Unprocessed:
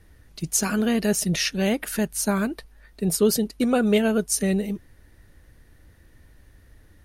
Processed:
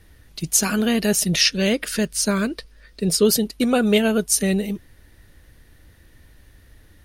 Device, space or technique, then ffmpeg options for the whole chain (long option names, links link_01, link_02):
presence and air boost: -filter_complex "[0:a]equalizer=frequency=3400:width_type=o:width=1.3:gain=5,highshelf=frequency=10000:gain=5.5,asettb=1/sr,asplit=3[link_01][link_02][link_03];[link_01]atrim=end=1.414[link_04];[link_02]atrim=start=1.41:end=3.25,asetpts=PTS-STARTPTS,afade=type=in:duration=0.004:curve=qsin,afade=type=out:start_time=1.836:duration=0.004:curve=qsin,equalizer=frequency=500:width_type=o:width=0.33:gain=5,equalizer=frequency=800:width_type=o:width=0.33:gain=-10,equalizer=frequency=5000:width_type=o:width=0.33:gain=6,equalizer=frequency=12500:width_type=o:width=0.33:gain=-11[link_05];[link_03]atrim=start=3.246[link_06];[link_04][link_05]acrossfade=duration=0.004:curve1=hsin:curve2=qsin[link_07];[link_07][link_06]acrossfade=duration=0.004:curve1=qsin:curve2=hsin,volume=2dB"